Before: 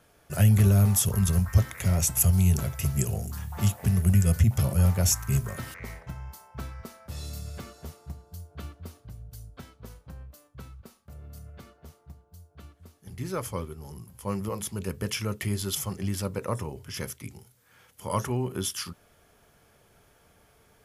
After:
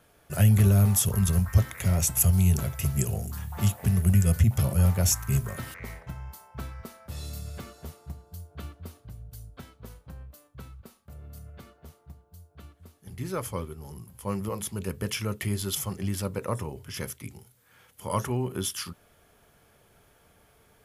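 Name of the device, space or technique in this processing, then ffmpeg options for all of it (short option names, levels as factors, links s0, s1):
exciter from parts: -filter_complex "[0:a]asplit=2[s0][s1];[s1]highpass=f=4100:w=0.5412,highpass=f=4100:w=1.3066,asoftclip=type=tanh:threshold=0.0316,highpass=3500,volume=0.251[s2];[s0][s2]amix=inputs=2:normalize=0"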